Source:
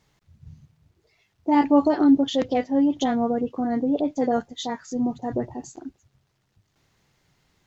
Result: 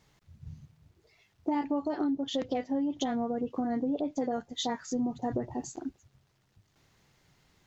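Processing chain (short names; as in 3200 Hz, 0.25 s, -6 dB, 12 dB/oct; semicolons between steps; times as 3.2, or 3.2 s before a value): compressor 12:1, threshold -27 dBFS, peak gain reduction 15.5 dB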